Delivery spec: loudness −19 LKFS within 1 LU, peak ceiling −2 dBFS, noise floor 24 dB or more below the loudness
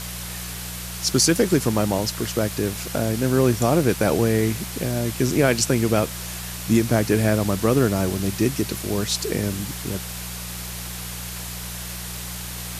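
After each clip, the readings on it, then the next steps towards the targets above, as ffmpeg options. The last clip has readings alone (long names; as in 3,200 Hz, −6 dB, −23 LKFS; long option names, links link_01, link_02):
mains hum 60 Hz; hum harmonics up to 180 Hz; level of the hum −33 dBFS; background noise floor −33 dBFS; target noise floor −47 dBFS; integrated loudness −23.0 LKFS; sample peak −5.5 dBFS; target loudness −19.0 LKFS
→ -af "bandreject=frequency=60:width_type=h:width=4,bandreject=frequency=120:width_type=h:width=4,bandreject=frequency=180:width_type=h:width=4"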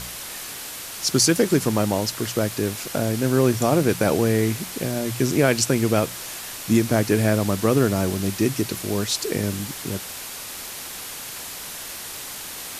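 mains hum none found; background noise floor −35 dBFS; target noise floor −47 dBFS
→ -af "afftdn=noise_reduction=12:noise_floor=-35"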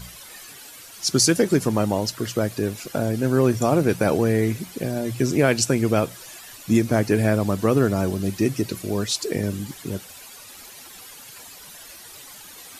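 background noise floor −43 dBFS; target noise floor −46 dBFS
→ -af "afftdn=noise_reduction=6:noise_floor=-43"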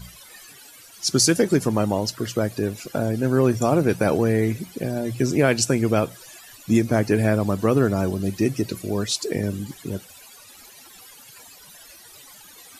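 background noise floor −47 dBFS; integrated loudness −22.0 LKFS; sample peak −6.5 dBFS; target loudness −19.0 LKFS
→ -af "volume=3dB"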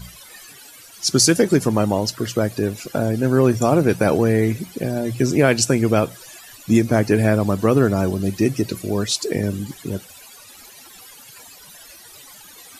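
integrated loudness −19.0 LKFS; sample peak −3.5 dBFS; background noise floor −44 dBFS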